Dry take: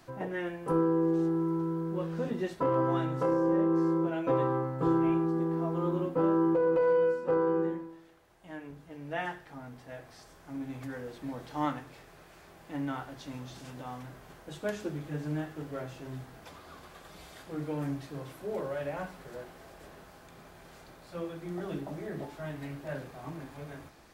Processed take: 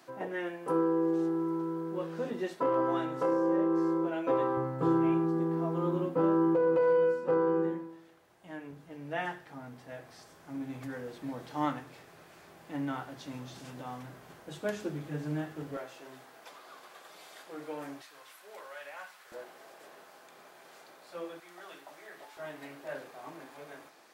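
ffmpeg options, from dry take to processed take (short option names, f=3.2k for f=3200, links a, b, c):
-af "asetnsamples=n=441:p=0,asendcmd='4.57 highpass f 110;15.77 highpass f 460;18.02 highpass f 1200;19.32 highpass f 410;21.4 highpass f 980;22.37 highpass f 390',highpass=260"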